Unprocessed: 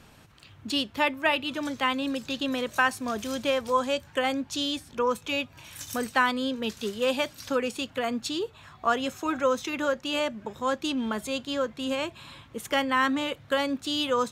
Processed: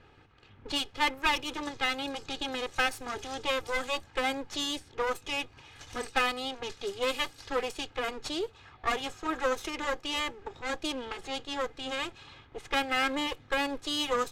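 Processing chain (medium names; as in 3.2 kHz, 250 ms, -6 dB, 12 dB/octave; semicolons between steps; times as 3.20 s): comb filter that takes the minimum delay 2.4 ms; level-controlled noise filter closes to 2.7 kHz, open at -25.5 dBFS; trim -2 dB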